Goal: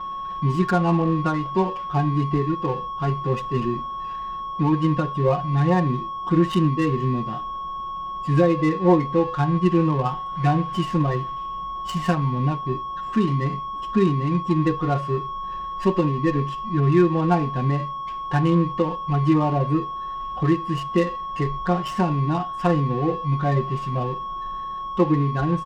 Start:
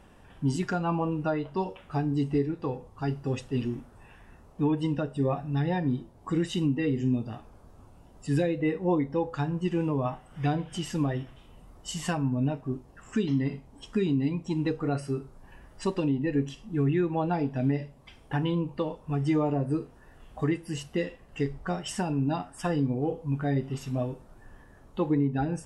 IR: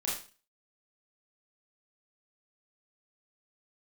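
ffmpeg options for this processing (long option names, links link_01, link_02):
-af "aeval=exprs='val(0)+0.0158*sin(2*PI*1100*n/s)':channel_layout=same,aecho=1:1:5.6:0.84,adynamicsmooth=sensitivity=4.5:basefreq=1200,volume=4.5dB"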